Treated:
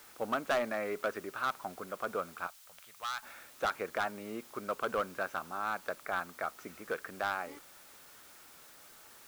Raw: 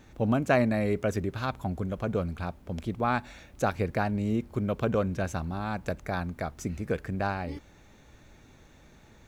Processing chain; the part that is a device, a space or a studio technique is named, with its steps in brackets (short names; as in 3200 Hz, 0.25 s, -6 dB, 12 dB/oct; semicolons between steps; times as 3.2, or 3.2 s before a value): drive-through speaker (BPF 450–3000 Hz; bell 1300 Hz +10.5 dB 0.6 oct; hard clip -21 dBFS, distortion -9 dB; white noise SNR 19 dB); 2.47–3.23 passive tone stack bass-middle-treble 10-0-10; gain -4 dB